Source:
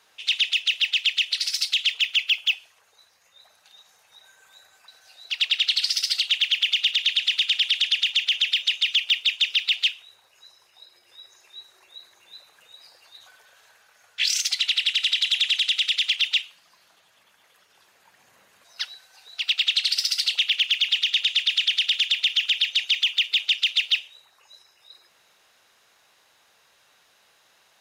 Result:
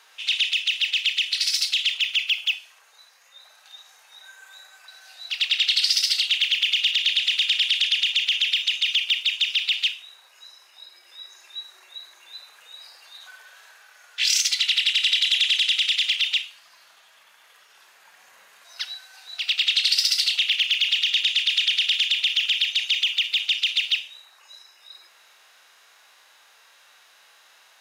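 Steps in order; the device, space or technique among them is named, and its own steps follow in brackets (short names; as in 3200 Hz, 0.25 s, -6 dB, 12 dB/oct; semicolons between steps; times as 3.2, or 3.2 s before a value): filter by subtraction (in parallel: LPF 1300 Hz 12 dB/oct + phase invert); on the sum: harmonic-percussive split percussive -10 dB; dynamic EQ 1300 Hz, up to -4 dB, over -43 dBFS, Q 0.77; 14.2–14.92 steep high-pass 760 Hz 96 dB/oct; gain +8.5 dB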